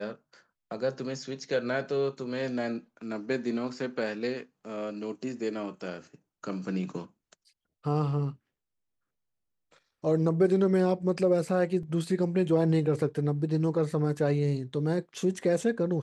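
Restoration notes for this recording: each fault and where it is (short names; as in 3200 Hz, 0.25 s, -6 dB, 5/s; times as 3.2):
11.83 gap 2.7 ms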